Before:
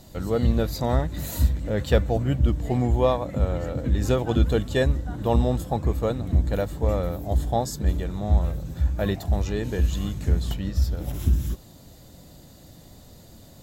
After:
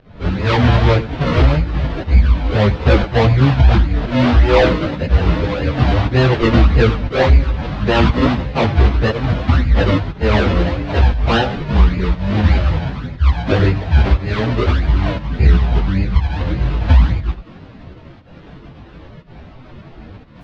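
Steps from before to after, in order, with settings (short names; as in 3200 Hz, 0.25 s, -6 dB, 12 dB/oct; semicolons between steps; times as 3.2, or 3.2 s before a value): low shelf 190 Hz +2.5 dB; decimation with a swept rate 38×, swing 100% 2.6 Hz; LPF 4100 Hz 24 dB/oct; pump 89 bpm, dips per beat 1, -23 dB, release 0.127 s; flutter echo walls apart 10.5 m, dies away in 0.24 s; plain phase-vocoder stretch 1.5×; maximiser +13.5 dB; gain -1 dB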